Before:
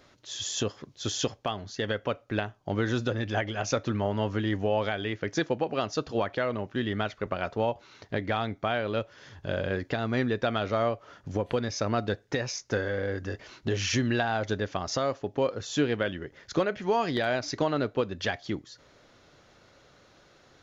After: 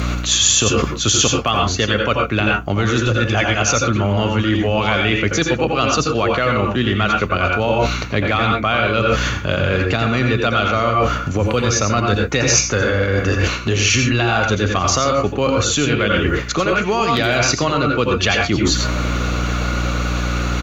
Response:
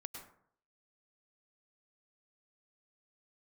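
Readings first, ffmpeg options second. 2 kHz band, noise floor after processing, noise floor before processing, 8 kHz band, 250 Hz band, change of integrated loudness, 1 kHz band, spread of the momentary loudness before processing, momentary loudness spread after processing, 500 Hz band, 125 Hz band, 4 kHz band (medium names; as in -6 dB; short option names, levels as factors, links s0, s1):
+15.0 dB, -24 dBFS, -60 dBFS, no reading, +12.0 dB, +13.0 dB, +14.0 dB, 7 LU, 5 LU, +10.0 dB, +15.0 dB, +16.5 dB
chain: -filter_complex "[0:a]bandreject=f=5200:w=7.3[s0];[1:a]atrim=start_sample=2205,afade=t=out:st=0.22:d=0.01,atrim=end_sample=10143,asetrate=52920,aresample=44100[s1];[s0][s1]afir=irnorm=-1:irlink=0,acrossover=split=190|3000[s2][s3][s4];[s3]acompressor=threshold=0.00447:ratio=1.5[s5];[s2][s5][s4]amix=inputs=3:normalize=0,superequalizer=10b=2.24:12b=2:16b=0.562,asplit=2[s6][s7];[s7]adelay=1224,volume=0.0355,highshelf=f=4000:g=-27.6[s8];[s6][s8]amix=inputs=2:normalize=0,apsyclip=25.1,aeval=exprs='val(0)+0.0501*(sin(2*PI*60*n/s)+sin(2*PI*2*60*n/s)/2+sin(2*PI*3*60*n/s)/3+sin(2*PI*4*60*n/s)/4+sin(2*PI*5*60*n/s)/5)':c=same,areverse,acompressor=threshold=0.0891:ratio=16,areverse,highshelf=f=6100:g=10,volume=2.37"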